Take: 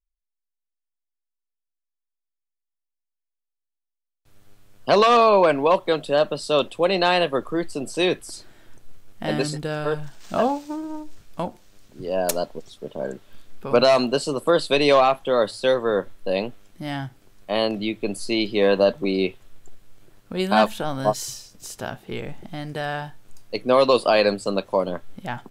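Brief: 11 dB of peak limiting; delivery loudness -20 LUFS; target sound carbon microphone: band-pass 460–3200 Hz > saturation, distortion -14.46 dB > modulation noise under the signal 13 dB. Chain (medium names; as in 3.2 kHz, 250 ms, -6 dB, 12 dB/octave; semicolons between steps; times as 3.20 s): peak limiter -14 dBFS; band-pass 460–3200 Hz; saturation -22 dBFS; modulation noise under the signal 13 dB; trim +11 dB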